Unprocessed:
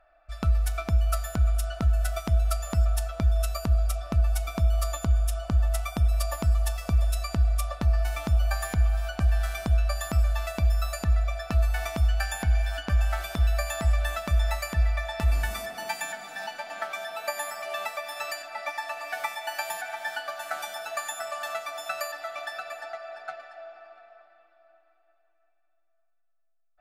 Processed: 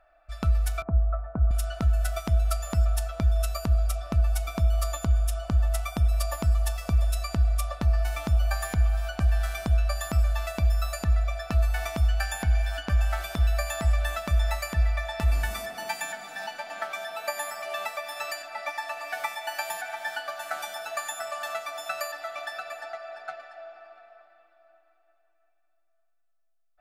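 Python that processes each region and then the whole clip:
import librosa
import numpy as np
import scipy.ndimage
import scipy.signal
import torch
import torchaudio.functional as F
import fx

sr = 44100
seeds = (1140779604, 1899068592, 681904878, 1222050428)

y = fx.chain(x, sr, fx.lowpass(hz=1200.0, slope=24),
    fx.band_widen(depth_pct=40), at=(0.82, 1.51))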